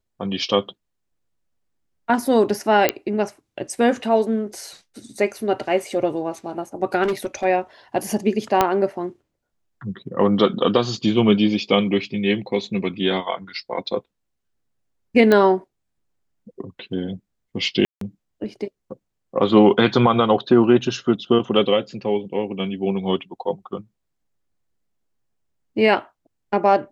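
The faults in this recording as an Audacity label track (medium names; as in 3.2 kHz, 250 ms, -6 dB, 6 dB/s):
2.890000	2.890000	pop -1 dBFS
7.030000	7.450000	clipped -18 dBFS
8.610000	8.610000	pop -2 dBFS
15.320000	15.320000	pop -6 dBFS
17.850000	18.010000	dropout 163 ms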